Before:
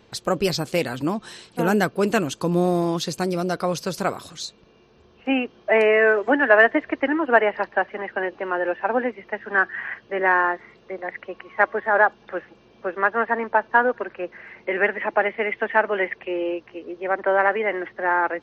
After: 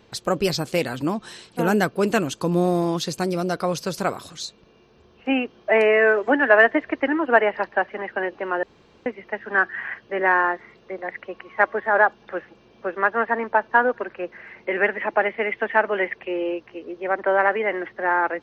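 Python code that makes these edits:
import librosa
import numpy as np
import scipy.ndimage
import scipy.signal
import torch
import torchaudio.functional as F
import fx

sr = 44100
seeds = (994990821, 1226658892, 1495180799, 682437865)

y = fx.edit(x, sr, fx.room_tone_fill(start_s=8.63, length_s=0.43), tone=tone)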